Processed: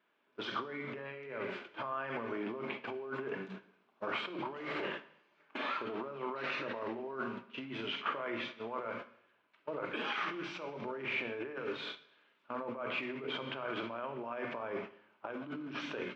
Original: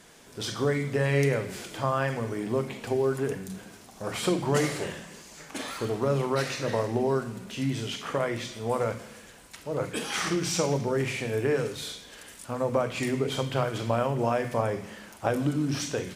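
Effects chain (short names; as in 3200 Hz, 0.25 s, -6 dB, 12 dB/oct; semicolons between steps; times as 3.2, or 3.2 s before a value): gate -37 dBFS, range -22 dB; negative-ratio compressor -33 dBFS, ratio -1; limiter -22.5 dBFS, peak gain reduction 5 dB; speaker cabinet 420–2700 Hz, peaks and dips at 490 Hz -8 dB, 750 Hz -8 dB, 1900 Hz -7 dB; two-slope reverb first 0.69 s, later 2.3 s, from -26 dB, DRR 12 dB; gain +1.5 dB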